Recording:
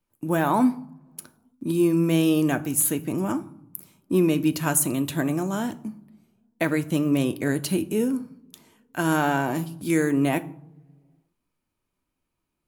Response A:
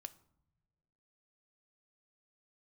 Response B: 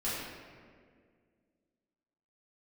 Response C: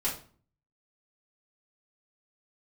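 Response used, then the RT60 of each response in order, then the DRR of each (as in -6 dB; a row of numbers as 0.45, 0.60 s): A; not exponential, 2.0 s, 0.45 s; 10.5, -10.5, -8.5 dB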